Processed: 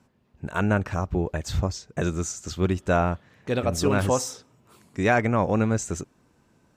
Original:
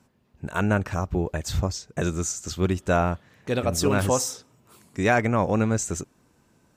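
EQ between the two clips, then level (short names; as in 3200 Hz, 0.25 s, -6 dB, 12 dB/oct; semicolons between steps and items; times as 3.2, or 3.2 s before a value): high shelf 6900 Hz -7.5 dB; 0.0 dB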